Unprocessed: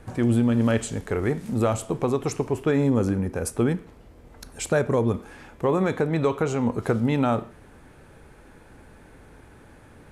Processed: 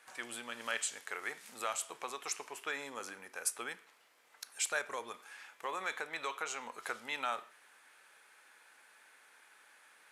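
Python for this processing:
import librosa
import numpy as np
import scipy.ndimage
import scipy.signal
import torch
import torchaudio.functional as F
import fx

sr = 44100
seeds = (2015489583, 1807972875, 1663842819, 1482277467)

y = scipy.signal.sosfilt(scipy.signal.butter(2, 1500.0, 'highpass', fs=sr, output='sos'), x)
y = F.gain(torch.from_numpy(y), -2.0).numpy()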